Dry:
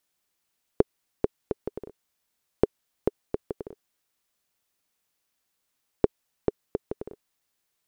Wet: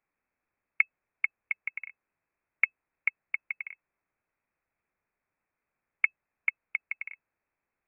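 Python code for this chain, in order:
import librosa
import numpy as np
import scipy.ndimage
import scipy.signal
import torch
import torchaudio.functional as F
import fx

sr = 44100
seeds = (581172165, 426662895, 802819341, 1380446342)

y = fx.diode_clip(x, sr, knee_db=-12.5)
y = fx.freq_invert(y, sr, carrier_hz=2600)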